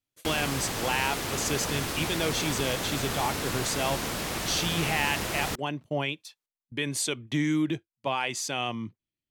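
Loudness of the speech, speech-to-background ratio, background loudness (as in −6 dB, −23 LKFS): −30.0 LKFS, 1.0 dB, −31.0 LKFS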